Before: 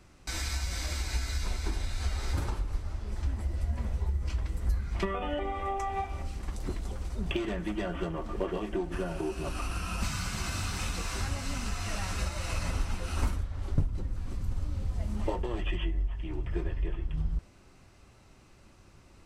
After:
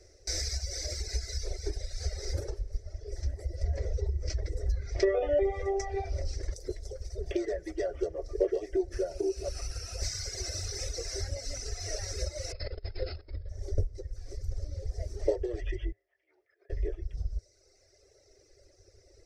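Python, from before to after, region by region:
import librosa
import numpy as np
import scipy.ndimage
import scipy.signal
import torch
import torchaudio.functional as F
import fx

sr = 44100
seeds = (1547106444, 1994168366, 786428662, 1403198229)

y = fx.chain(x, sr, fx.bessel_lowpass(hz=6100.0, order=2),
    fx.env_flatten(amount_pct=50), at=(3.61, 6.54))
y = fx.chain(y, sr, fx.brickwall_lowpass(high_hz=5300.0),
    fx.over_compress(threshold_db=-33.0, ratio=-0.5), at=(12.52, 13.49))
y = fx.chain(y, sr, fx.highpass(hz=1300.0, slope=12),
    fx.over_compress(threshold_db=-55.0, ratio=-0.5),
    fx.spacing_loss(db_at_10k=37), at=(15.92, 16.7))
y = fx.band_shelf(y, sr, hz=4200.0, db=10.0, octaves=1.1)
y = fx.dereverb_blind(y, sr, rt60_s=2.0)
y = fx.curve_eq(y, sr, hz=(100.0, 200.0, 410.0, 610.0, 1000.0, 2000.0, 3100.0, 5700.0, 13000.0), db=(0, -28, 10, 6, -21, 0, -22, 3, -7))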